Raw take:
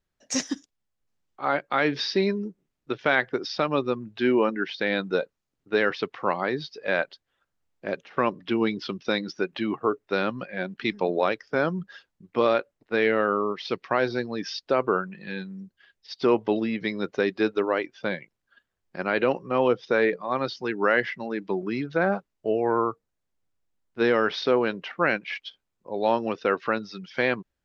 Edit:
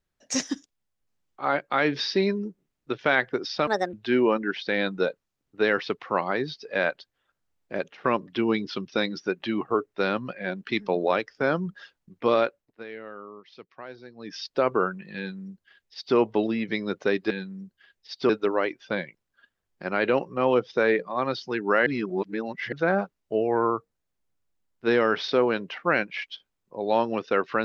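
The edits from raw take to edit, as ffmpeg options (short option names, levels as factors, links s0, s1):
-filter_complex "[0:a]asplit=9[s0][s1][s2][s3][s4][s5][s6][s7][s8];[s0]atrim=end=3.674[s9];[s1]atrim=start=3.67:end=4.06,asetpts=PTS-STARTPTS,asetrate=65268,aresample=44100[s10];[s2]atrim=start=4.056:end=12.97,asetpts=PTS-STARTPTS,afade=t=out:st=8.514:d=0.4:silence=0.133352[s11];[s3]atrim=start=12.97:end=14.26,asetpts=PTS-STARTPTS,volume=0.133[s12];[s4]atrim=start=14.26:end=17.432,asetpts=PTS-STARTPTS,afade=t=in:d=0.4:silence=0.133352[s13];[s5]atrim=start=15.298:end=16.292[s14];[s6]atrim=start=17.428:end=21.002[s15];[s7]atrim=start=20.998:end=21.862,asetpts=PTS-STARTPTS,areverse[s16];[s8]atrim=start=21.858[s17];[s9][s10]acrossfade=d=0.004:c1=hsin:c2=hsin[s18];[s11][s12][s13]concat=n=3:v=0:a=1[s19];[s18][s19]acrossfade=d=0.004:c1=hsin:c2=hsin[s20];[s20][s14]acrossfade=d=0.004:c1=hsin:c2=hsin[s21];[s21][s15]acrossfade=d=0.004:c1=hsin:c2=hsin[s22];[s22][s16]acrossfade=d=0.004:c1=hsin:c2=hsin[s23];[s23][s17]acrossfade=d=0.004:c1=hsin:c2=hsin"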